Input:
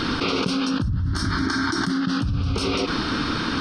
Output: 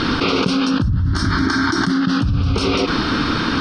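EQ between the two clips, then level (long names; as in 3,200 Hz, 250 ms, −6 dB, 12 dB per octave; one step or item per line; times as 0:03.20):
high-frequency loss of the air 51 metres
+6.0 dB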